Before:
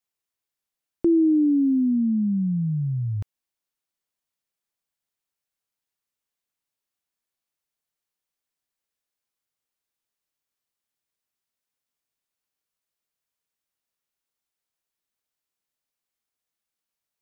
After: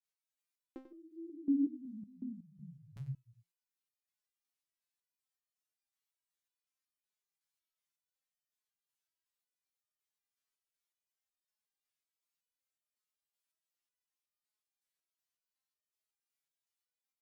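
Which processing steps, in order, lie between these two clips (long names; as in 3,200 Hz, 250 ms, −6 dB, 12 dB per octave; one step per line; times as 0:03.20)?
tilt shelving filter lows −6.5 dB, about 660 Hz
granular cloud 100 ms, spray 334 ms
slap from a distant wall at 16 metres, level −10 dB
step-sequenced resonator 5.4 Hz 140–610 Hz
level +1.5 dB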